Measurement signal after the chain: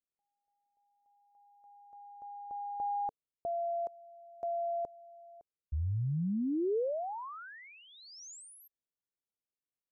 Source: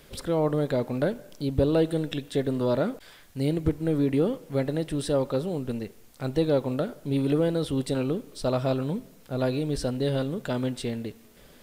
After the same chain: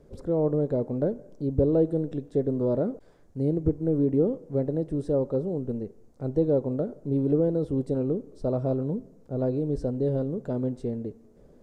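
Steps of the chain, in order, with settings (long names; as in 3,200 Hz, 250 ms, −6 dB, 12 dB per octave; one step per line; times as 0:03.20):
drawn EQ curve 270 Hz 0 dB, 450 Hz +2 dB, 3,100 Hz −26 dB, 6,600 Hz −16 dB, 14,000 Hz −28 dB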